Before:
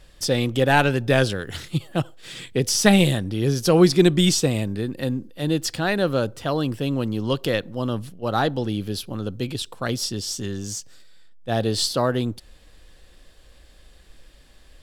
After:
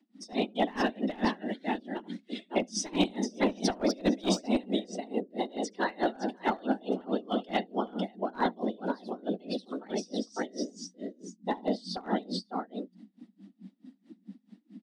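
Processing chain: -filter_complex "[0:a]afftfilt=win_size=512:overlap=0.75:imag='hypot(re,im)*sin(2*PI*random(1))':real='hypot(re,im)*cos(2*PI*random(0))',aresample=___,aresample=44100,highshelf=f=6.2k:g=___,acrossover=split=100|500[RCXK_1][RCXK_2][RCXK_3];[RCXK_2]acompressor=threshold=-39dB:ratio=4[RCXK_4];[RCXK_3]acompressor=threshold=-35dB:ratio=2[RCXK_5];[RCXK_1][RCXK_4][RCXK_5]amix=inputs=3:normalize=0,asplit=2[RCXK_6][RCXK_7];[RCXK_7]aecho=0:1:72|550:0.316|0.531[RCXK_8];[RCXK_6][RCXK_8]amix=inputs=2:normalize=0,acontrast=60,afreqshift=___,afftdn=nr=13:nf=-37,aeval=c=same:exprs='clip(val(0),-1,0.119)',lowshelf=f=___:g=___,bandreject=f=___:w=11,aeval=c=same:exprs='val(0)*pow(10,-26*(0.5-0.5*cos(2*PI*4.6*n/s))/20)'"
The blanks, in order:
22050, -9.5, 180, 180, 9, 7.6k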